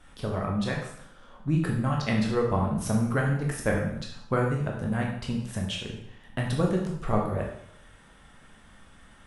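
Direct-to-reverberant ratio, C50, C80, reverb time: -1.5 dB, 4.0 dB, 7.0 dB, 0.70 s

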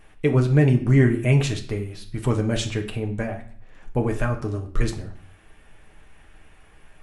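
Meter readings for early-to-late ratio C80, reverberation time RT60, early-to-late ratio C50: 15.0 dB, 0.45 s, 11.5 dB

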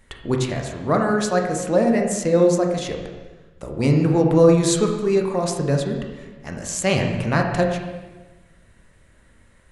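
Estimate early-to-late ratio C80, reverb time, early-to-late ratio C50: 6.5 dB, 1.2 s, 5.0 dB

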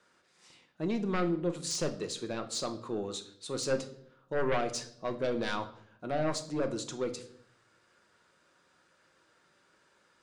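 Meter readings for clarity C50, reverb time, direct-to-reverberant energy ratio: 13.0 dB, 0.65 s, 6.5 dB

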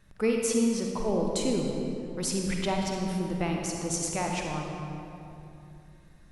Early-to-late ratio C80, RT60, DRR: 2.5 dB, 2.9 s, 0.0 dB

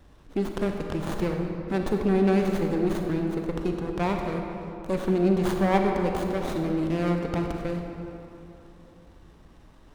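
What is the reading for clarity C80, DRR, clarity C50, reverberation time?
4.0 dB, 2.5 dB, 3.0 dB, 2.9 s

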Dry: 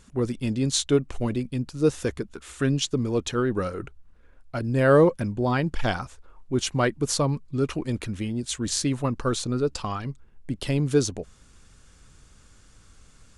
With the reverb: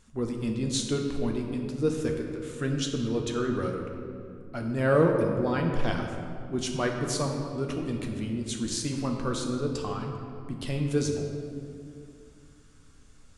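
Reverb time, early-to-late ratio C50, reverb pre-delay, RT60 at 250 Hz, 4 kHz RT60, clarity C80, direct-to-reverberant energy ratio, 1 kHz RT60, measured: 2.4 s, 3.5 dB, 9 ms, 3.2 s, 1.4 s, 4.5 dB, 1.5 dB, 2.2 s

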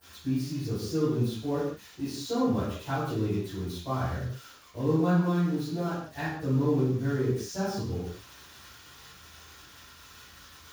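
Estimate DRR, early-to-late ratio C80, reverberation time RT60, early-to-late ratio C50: -18.5 dB, 3.0 dB, not exponential, -1.5 dB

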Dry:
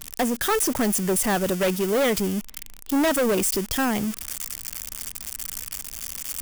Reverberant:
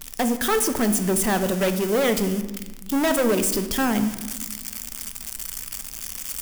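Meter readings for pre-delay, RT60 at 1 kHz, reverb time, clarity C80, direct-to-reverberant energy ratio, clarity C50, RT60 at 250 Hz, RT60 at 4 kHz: 3 ms, 1.1 s, 1.3 s, 12.5 dB, 8.5 dB, 10.5 dB, 2.2 s, 0.80 s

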